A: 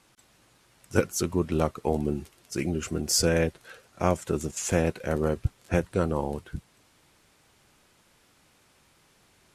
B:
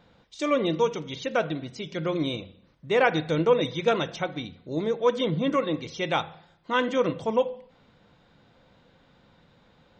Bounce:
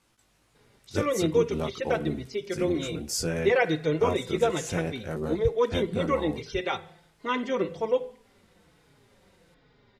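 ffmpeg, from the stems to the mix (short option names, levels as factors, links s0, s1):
-filter_complex "[0:a]flanger=delay=17:depth=2.8:speed=1.3,volume=0.708[s0];[1:a]equalizer=f=400:t=o:w=0.33:g=11,equalizer=f=2000:t=o:w=0.33:g=7,equalizer=f=5000:t=o:w=0.33:g=6,asplit=2[s1][s2];[s2]adelay=4.3,afreqshift=-1.2[s3];[s1][s3]amix=inputs=2:normalize=1,adelay=550,volume=0.794[s4];[s0][s4]amix=inputs=2:normalize=0,lowshelf=f=68:g=6.5"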